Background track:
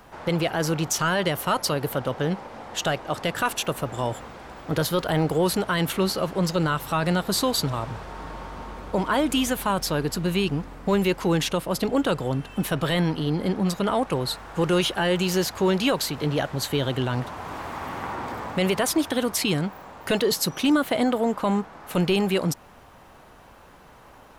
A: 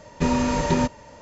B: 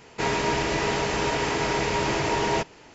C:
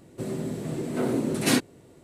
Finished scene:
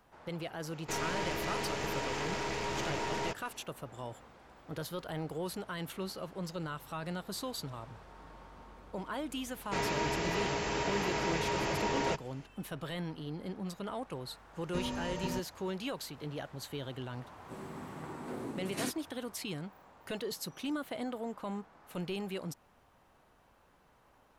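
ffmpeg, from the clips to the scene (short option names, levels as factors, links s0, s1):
-filter_complex "[2:a]asplit=2[s0][s1];[0:a]volume=0.158[s2];[s0]aeval=exprs='(tanh(15.8*val(0)+0.45)-tanh(0.45))/15.8':c=same,atrim=end=2.94,asetpts=PTS-STARTPTS,volume=0.447,afade=t=in:d=0.004:c=hsin,afade=t=out:st=2.936:d=0.004:c=hsin,adelay=700[s3];[s1]atrim=end=2.94,asetpts=PTS-STARTPTS,volume=0.376,afade=t=in:d=0.004:c=hsin,afade=t=out:st=2.936:d=0.004:c=hsin,adelay=9530[s4];[1:a]atrim=end=1.21,asetpts=PTS-STARTPTS,volume=0.15,afade=t=in:d=0.004:c=hsin,afade=t=out:st=1.206:d=0.004:c=hsin,adelay=14530[s5];[3:a]atrim=end=2.03,asetpts=PTS-STARTPTS,volume=0.178,afade=t=in:d=0.004:c=hsin,afade=t=out:st=2.026:d=0.004:c=hsin,adelay=17310[s6];[s2][s3][s4][s5][s6]amix=inputs=5:normalize=0"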